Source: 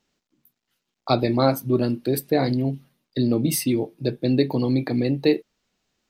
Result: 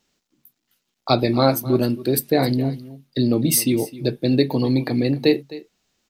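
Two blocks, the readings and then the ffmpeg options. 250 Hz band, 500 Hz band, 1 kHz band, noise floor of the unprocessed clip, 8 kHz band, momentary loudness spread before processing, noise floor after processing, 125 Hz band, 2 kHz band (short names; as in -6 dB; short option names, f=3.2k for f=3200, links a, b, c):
+2.0 dB, +2.0 dB, +2.5 dB, -82 dBFS, +7.0 dB, 7 LU, -77 dBFS, +2.0 dB, +3.5 dB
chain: -filter_complex "[0:a]highshelf=f=4.1k:g=6,asplit=2[a][b];[b]aecho=0:1:260:0.133[c];[a][c]amix=inputs=2:normalize=0,volume=2dB"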